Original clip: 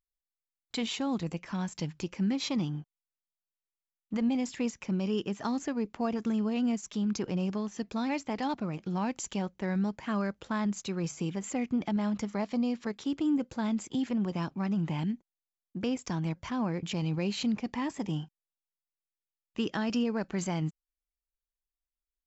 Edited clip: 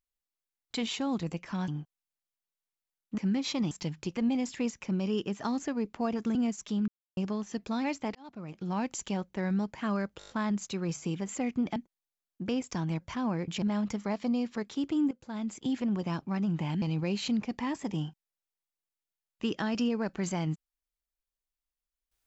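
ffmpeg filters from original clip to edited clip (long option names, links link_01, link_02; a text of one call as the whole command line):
ffmpeg -i in.wav -filter_complex "[0:a]asplit=18[link_01][link_02][link_03][link_04][link_05][link_06][link_07][link_08][link_09][link_10][link_11][link_12][link_13][link_14][link_15][link_16][link_17][link_18];[link_01]atrim=end=1.682[link_19];[link_02]atrim=start=2.668:end=4.172[link_20];[link_03]atrim=start=2.138:end=2.672[link_21];[link_04]atrim=start=1.678:end=2.142[link_22];[link_05]atrim=start=4.168:end=6.352[link_23];[link_06]atrim=start=6.598:end=7.13,asetpts=PTS-STARTPTS,afade=type=out:start_time=0.528:duration=0.004:curve=hsin[link_24];[link_07]atrim=start=7.13:end=7.42,asetpts=PTS-STARTPTS,volume=0[link_25];[link_08]atrim=start=7.42:end=8.4,asetpts=PTS-STARTPTS,afade=type=in:duration=0.004:curve=hsin,afade=type=out:start_time=0.976:duration=0.004:curve=hsin[link_26];[link_09]atrim=start=8.4:end=10.462,asetpts=PTS-STARTPTS,afade=type=in:duration=0.65[link_27];[link_10]atrim=start=10.438:end=10.462[link_28];[link_11]atrim=start=10.438:end=10.462[link_29];[link_12]atrim=start=10.438:end=10.462[link_30];[link_13]atrim=start=10.438:end=10.462[link_31];[link_14]atrim=start=10.438:end=11.912[link_32];[link_15]atrim=start=15.108:end=16.972[link_33];[link_16]atrim=start=11.908:end=13.4,asetpts=PTS-STARTPTS,afade=type=out:start_time=1.488:duration=0.004:curve=hsin:silence=0.149624[link_34];[link_17]atrim=start=13.4:end=15.112,asetpts=PTS-STARTPTS,afade=type=in:duration=0.59:silence=0.149624[link_35];[link_18]atrim=start=16.968[link_36];[link_19][link_20]acrossfade=duration=0.004:curve1=hsin:curve2=hsin[link_37];[link_37][link_21]acrossfade=duration=0.004:curve1=hsin:curve2=hsin[link_38];[link_38][link_22]acrossfade=duration=0.004:curve1=hsin:curve2=hsin[link_39];[link_39][link_23]acrossfade=duration=0.004:curve1=hsin:curve2=hsin[link_40];[link_24][link_25][link_26][link_27]concat=n=4:v=0:a=1[link_41];[link_40][link_41]acrossfade=duration=0.004:curve1=hsin:curve2=hsin[link_42];[link_42][link_28]acrossfade=duration=0.004:curve1=hsin:curve2=hsin[link_43];[link_43][link_29]acrossfade=duration=0.004:curve1=hsin:curve2=hsin[link_44];[link_44][link_30]acrossfade=duration=0.004:curve1=hsin:curve2=hsin[link_45];[link_45][link_31]acrossfade=duration=0.004:curve1=hsin:curve2=hsin[link_46];[link_46][link_32]acrossfade=duration=0.004:curve1=hsin:curve2=hsin[link_47];[link_47][link_33]acrossfade=duration=0.004:curve1=hsin:curve2=hsin[link_48];[link_34][link_35]concat=n=2:v=0:a=1[link_49];[link_48][link_49]acrossfade=duration=0.004:curve1=hsin:curve2=hsin[link_50];[link_50][link_36]acrossfade=duration=0.004:curve1=hsin:curve2=hsin" out.wav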